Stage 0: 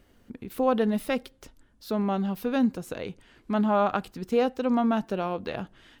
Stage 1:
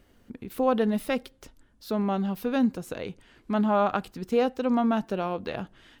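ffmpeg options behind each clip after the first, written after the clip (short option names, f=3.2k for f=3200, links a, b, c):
-af anull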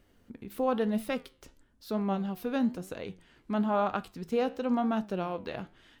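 -af "flanger=delay=8.8:depth=6.4:regen=80:speed=1:shape=triangular"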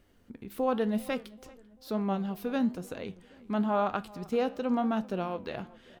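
-filter_complex "[0:a]asplit=2[a][b];[b]adelay=391,lowpass=f=2.3k:p=1,volume=-21.5dB,asplit=2[c][d];[d]adelay=391,lowpass=f=2.3k:p=1,volume=0.46,asplit=2[e][f];[f]adelay=391,lowpass=f=2.3k:p=1,volume=0.46[g];[a][c][e][g]amix=inputs=4:normalize=0"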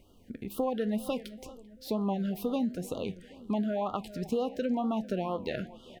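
-af "acompressor=threshold=-31dB:ratio=6,afftfilt=real='re*(1-between(b*sr/1024,930*pow(2000/930,0.5+0.5*sin(2*PI*2.1*pts/sr))/1.41,930*pow(2000/930,0.5+0.5*sin(2*PI*2.1*pts/sr))*1.41))':imag='im*(1-between(b*sr/1024,930*pow(2000/930,0.5+0.5*sin(2*PI*2.1*pts/sr))/1.41,930*pow(2000/930,0.5+0.5*sin(2*PI*2.1*pts/sr))*1.41))':win_size=1024:overlap=0.75,volume=4.5dB"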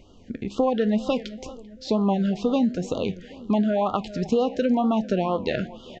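-af "aresample=16000,aresample=44100,volume=8.5dB"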